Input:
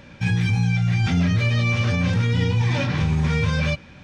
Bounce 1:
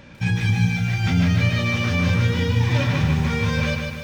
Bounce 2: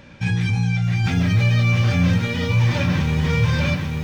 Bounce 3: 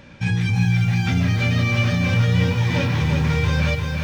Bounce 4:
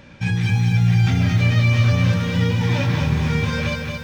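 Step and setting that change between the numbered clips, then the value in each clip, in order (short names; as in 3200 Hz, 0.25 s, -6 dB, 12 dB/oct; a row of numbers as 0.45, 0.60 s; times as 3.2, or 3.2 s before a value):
lo-fi delay, time: 0.15, 0.841, 0.349, 0.223 s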